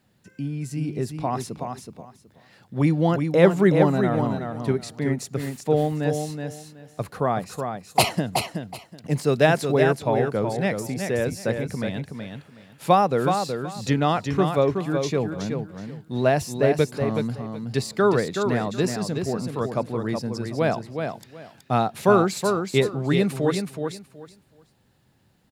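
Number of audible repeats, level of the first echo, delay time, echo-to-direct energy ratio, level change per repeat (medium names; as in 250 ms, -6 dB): 3, -6.0 dB, 373 ms, -6.0 dB, -14.0 dB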